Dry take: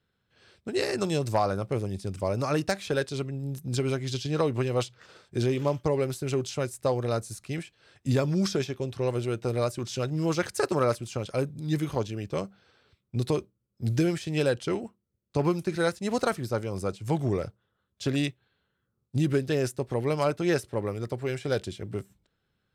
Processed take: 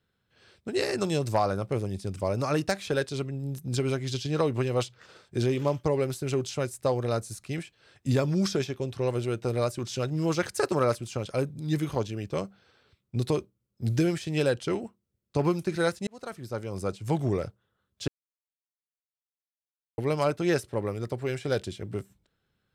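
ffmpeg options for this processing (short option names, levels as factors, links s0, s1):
-filter_complex "[0:a]asplit=4[s0][s1][s2][s3];[s0]atrim=end=16.07,asetpts=PTS-STARTPTS,afade=t=out:st=16.066:d=0.004:c=hsin[s4];[s1]atrim=start=16.07:end=18.08,asetpts=PTS-STARTPTS,afade=t=in:d=0.83,afade=t=out:st=2.006:d=0.004:c=hsin[s5];[s2]atrim=start=18.08:end=19.98,asetpts=PTS-STARTPTS,volume=0[s6];[s3]atrim=start=19.98,asetpts=PTS-STARTPTS,afade=t=in:d=0.004:c=hsin[s7];[s4][s5][s6][s7]concat=n=4:v=0:a=1"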